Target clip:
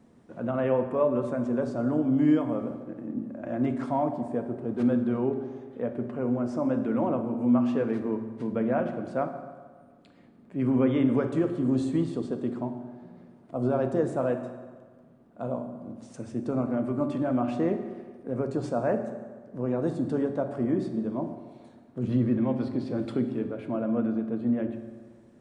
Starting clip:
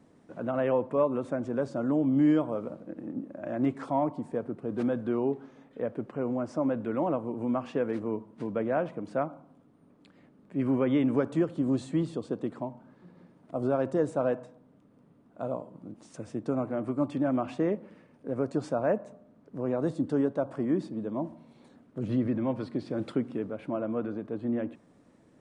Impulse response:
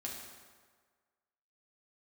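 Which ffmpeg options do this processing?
-filter_complex "[0:a]asplit=2[a][b];[1:a]atrim=start_sample=2205,lowshelf=f=210:g=7.5[c];[b][c]afir=irnorm=-1:irlink=0,volume=-0.5dB[d];[a][d]amix=inputs=2:normalize=0,volume=-4dB"

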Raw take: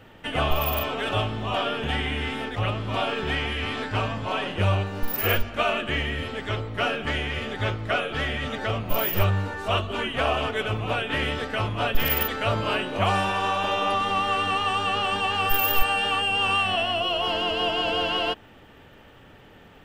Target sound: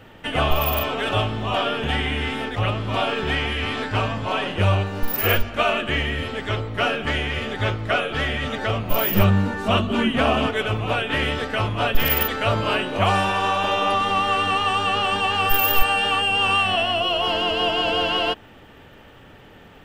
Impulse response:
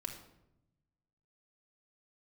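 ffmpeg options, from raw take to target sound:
-filter_complex "[0:a]asettb=1/sr,asplit=3[a][b][c];[a]atrim=end=9.094[d];[b]atrim=start=9.09:end=10.5,asetpts=PTS-STARTPTS,afade=t=in:d=0.004:c=qsin,afade=t=out:st=1.406:d=0.004:c=qsin,equalizer=f=220:t=o:w=0.61:g=14[e];[c]atrim=start=10.496[f];[d][e]acrossfade=d=0.004:c1=hsin:c2=qsin[g];[g][f]acrossfade=d=0.004:c1=qsin:c2=hsin,volume=3.5dB"

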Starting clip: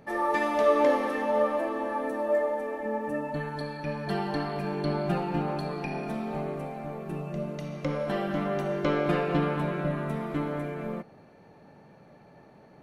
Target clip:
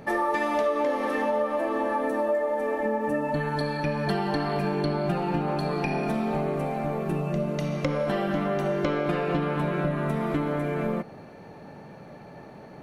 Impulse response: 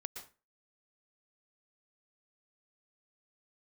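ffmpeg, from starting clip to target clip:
-af "acompressor=threshold=-32dB:ratio=6,volume=9dB"

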